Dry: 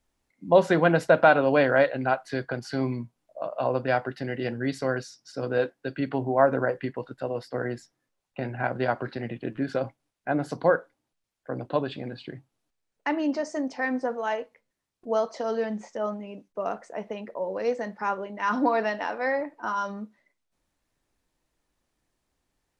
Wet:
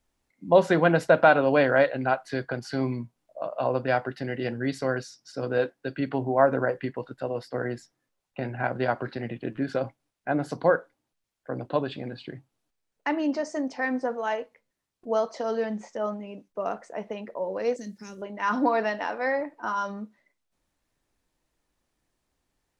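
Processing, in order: 17.76–18.22 EQ curve 290 Hz 0 dB, 890 Hz -28 dB, 6900 Hz +11 dB

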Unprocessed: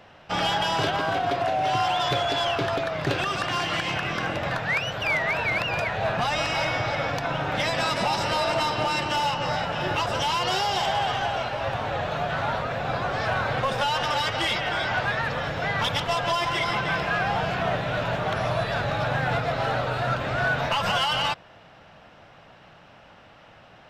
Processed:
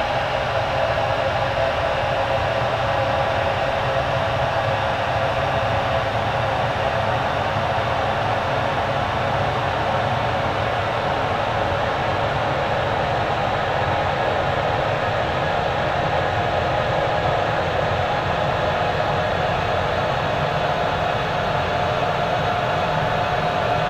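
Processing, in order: speakerphone echo 0.37 s, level -13 dB; Paulstretch 40×, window 0.50 s, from 11.58; gain +7 dB

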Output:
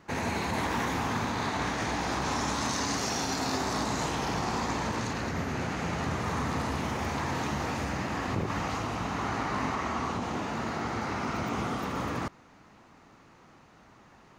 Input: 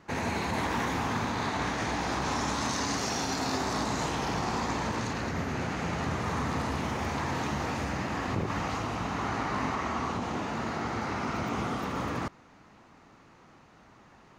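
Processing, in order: high shelf 9200 Hz +4 dB

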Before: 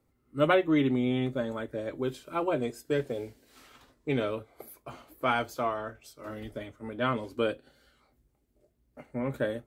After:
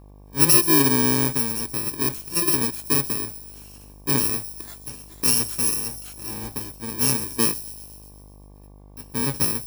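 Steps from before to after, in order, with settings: FFT order left unsorted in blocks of 64 samples; 5.78–6.6 bell 760 Hz +12.5 dB 0.2 oct; thin delay 0.125 s, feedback 62%, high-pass 4900 Hz, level -13 dB; buzz 50 Hz, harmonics 23, -54 dBFS -6 dB/oct; gain +7.5 dB

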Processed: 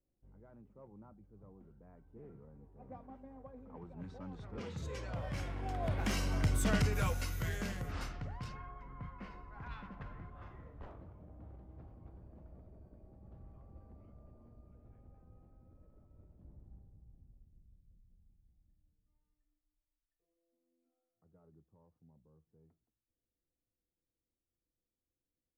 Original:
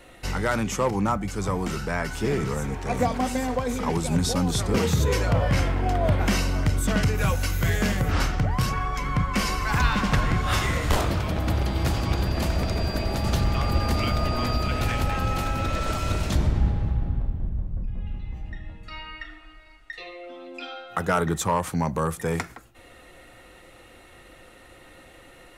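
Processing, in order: Doppler pass-by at 6.64, 12 m/s, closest 5.1 m; low-pass opened by the level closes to 310 Hz, open at -28.5 dBFS; gain -7.5 dB

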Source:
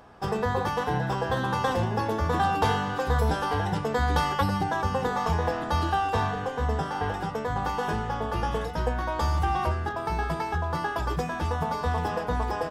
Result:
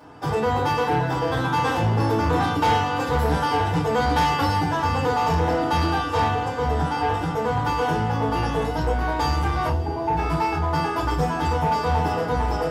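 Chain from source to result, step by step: 9.69–10.17 elliptic low-pass 930 Hz; FDN reverb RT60 0.3 s, low-frequency decay 1.5×, high-frequency decay 1×, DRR -5.5 dB; soft clip -13.5 dBFS, distortion -15 dB; HPF 62 Hz; on a send: diffused feedback echo 0.501 s, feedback 71%, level -16 dB; on the sum: gain -1 dB

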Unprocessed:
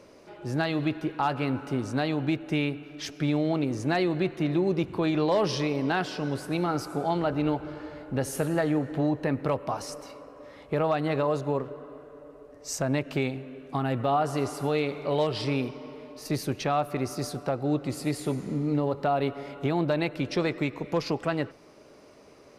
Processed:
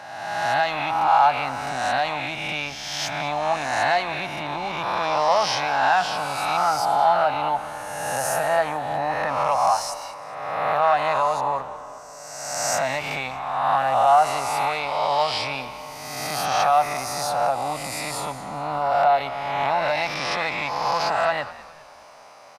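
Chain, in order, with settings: spectral swells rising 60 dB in 1.47 s; in parallel at -1.5 dB: limiter -18 dBFS, peak gain reduction 7.5 dB; on the sum: HPF 89 Hz 24 dB/oct; on a send: frequency-shifting echo 0.204 s, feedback 46%, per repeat -82 Hz, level -17.5 dB; on the sum: soft clip -9.5 dBFS, distortion -23 dB; resonant low shelf 540 Hz -12.5 dB, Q 3

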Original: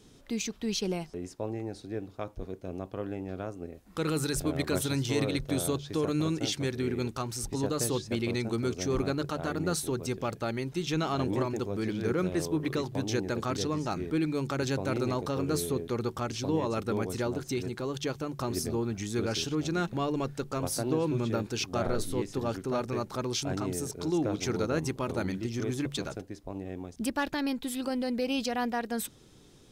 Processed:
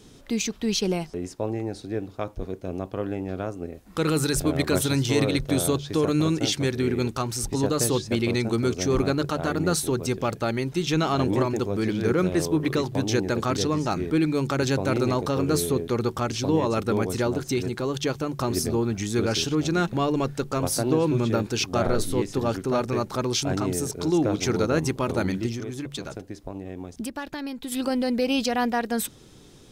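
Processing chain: 25.52–27.72 compressor 5:1, threshold -37 dBFS, peak gain reduction 11 dB; gain +6.5 dB

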